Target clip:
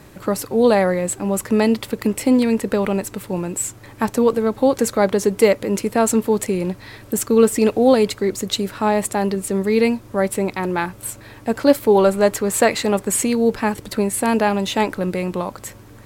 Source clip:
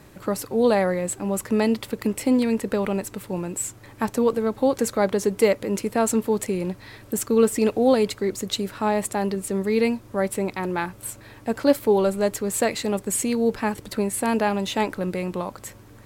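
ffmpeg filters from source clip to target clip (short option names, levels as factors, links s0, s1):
-filter_complex "[0:a]asettb=1/sr,asplit=3[s0][s1][s2];[s0]atrim=end=11.954[s3];[s1]atrim=start=11.95:end=13.27,asetpts=PTS-STARTPTS,afade=t=in:d=0.004:c=qsin,afade=t=out:st=1.316:d=0.004:c=qsin,equalizer=f=1200:t=o:w=2.4:g=4.5[s4];[s2]atrim=start=13.266[s5];[s3][s4]acrossfade=d=0.004:c1=hsin:c2=qsin[s6];[s6][s5]acrossfade=d=0.004:c1=qsin:c2=hsin,volume=1.68"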